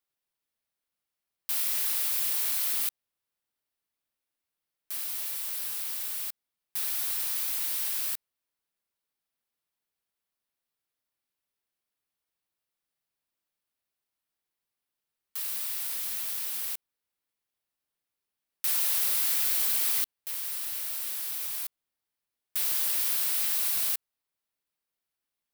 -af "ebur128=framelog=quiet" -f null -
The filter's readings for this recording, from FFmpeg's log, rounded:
Integrated loudness:
  I:         -27.1 LUFS
  Threshold: -37.2 LUFS
Loudness range:
  LRA:         8.4 LU
  Threshold: -49.4 LUFS
  LRA low:   -34.5 LUFS
  LRA high:  -26.1 LUFS